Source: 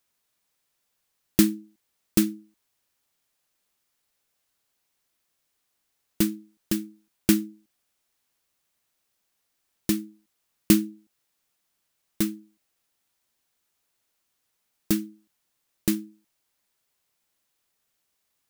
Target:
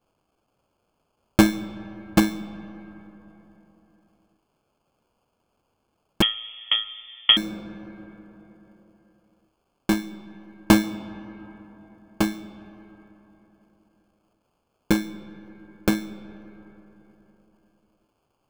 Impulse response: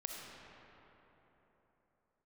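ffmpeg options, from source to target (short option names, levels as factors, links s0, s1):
-filter_complex "[0:a]acrusher=samples=23:mix=1:aa=0.000001,asplit=2[s0][s1];[1:a]atrim=start_sample=2205[s2];[s1][s2]afir=irnorm=-1:irlink=0,volume=0.335[s3];[s0][s3]amix=inputs=2:normalize=0,asettb=1/sr,asplit=3[s4][s5][s6];[s4]atrim=end=6.224[s7];[s5]atrim=start=6.22:end=7.37,asetpts=PTS-STARTPTS,afade=t=in:d=0.004:c=qsin,afade=t=out:st=1.146:d=0.004:c=qsin,lowpass=f=3000:t=q:w=0.5098,lowpass=f=3000:t=q:w=0.6013,lowpass=f=3000:t=q:w=0.9,lowpass=f=3000:t=q:w=2.563,afreqshift=-3500[s8];[s6]atrim=start=7.366[s9];[s7][s8]acrossfade=d=0.004:c1=hsin:c2=qsin[s10];[s10][s9]acrossfade=d=0.004:c1=qsin:c2=hsin,volume=1.19"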